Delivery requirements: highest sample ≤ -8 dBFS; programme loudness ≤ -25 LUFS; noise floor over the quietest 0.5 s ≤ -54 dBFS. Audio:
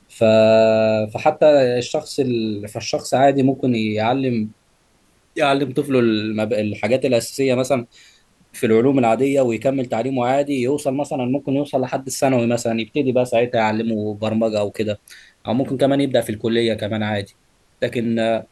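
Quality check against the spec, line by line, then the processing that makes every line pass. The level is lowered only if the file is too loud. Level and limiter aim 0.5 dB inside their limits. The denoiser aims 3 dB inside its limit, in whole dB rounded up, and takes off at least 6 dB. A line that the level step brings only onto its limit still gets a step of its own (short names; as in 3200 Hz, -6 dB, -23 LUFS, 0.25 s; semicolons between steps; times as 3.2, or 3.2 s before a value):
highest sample -4.0 dBFS: fail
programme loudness -19.0 LUFS: fail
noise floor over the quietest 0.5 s -59 dBFS: OK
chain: gain -6.5 dB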